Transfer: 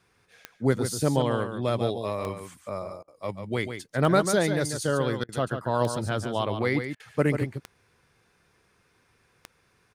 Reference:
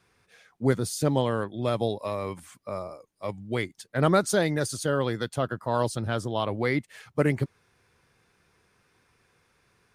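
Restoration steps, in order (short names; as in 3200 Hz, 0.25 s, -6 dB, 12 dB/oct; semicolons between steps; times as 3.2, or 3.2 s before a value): de-click; interpolate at 3.03/5.24/6.95, 47 ms; inverse comb 0.142 s -8 dB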